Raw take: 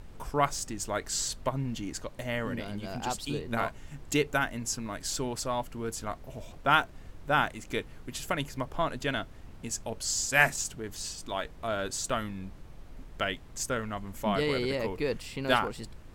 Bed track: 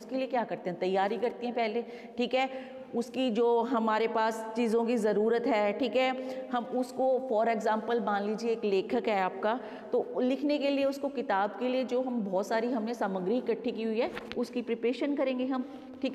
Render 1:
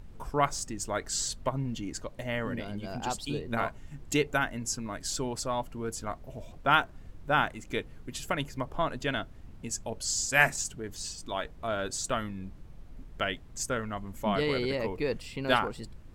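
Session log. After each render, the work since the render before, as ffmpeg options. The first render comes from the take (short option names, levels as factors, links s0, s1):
-af "afftdn=nr=6:nf=-48"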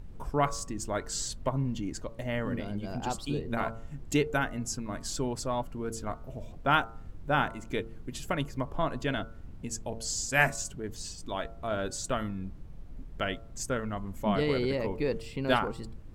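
-af "tiltshelf=f=680:g=3,bandreject=f=113.1:t=h:w=4,bandreject=f=226.2:t=h:w=4,bandreject=f=339.3:t=h:w=4,bandreject=f=452.4:t=h:w=4,bandreject=f=565.5:t=h:w=4,bandreject=f=678.6:t=h:w=4,bandreject=f=791.7:t=h:w=4,bandreject=f=904.8:t=h:w=4,bandreject=f=1017.9:t=h:w=4,bandreject=f=1131:t=h:w=4,bandreject=f=1244.1:t=h:w=4,bandreject=f=1357.2:t=h:w=4,bandreject=f=1470.3:t=h:w=4"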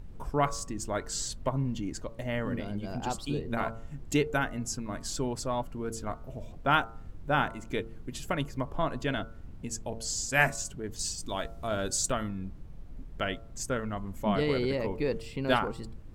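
-filter_complex "[0:a]asettb=1/sr,asplit=3[s0][s1][s2];[s0]atrim=end=10.994[s3];[s1]atrim=start=10.99:end=12.12,asetpts=PTS-STARTPTS,afade=t=in:d=0.004:c=qsin,afade=t=out:st=1.126:d=0.004:c=qsin,bass=f=250:g=2,treble=f=4000:g=9[s4];[s2]atrim=start=12.116[s5];[s3][s4]acrossfade=d=0.004:c1=hsin:c2=qsin[s6];[s6][s5]acrossfade=d=0.004:c1=qsin:c2=hsin"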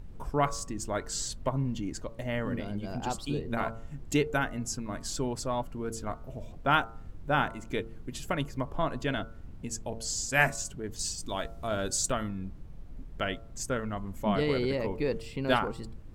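-af anull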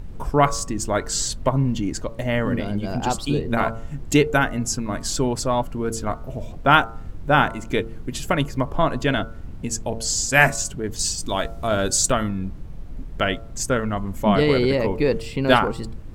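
-af "volume=3.16,alimiter=limit=0.891:level=0:latency=1"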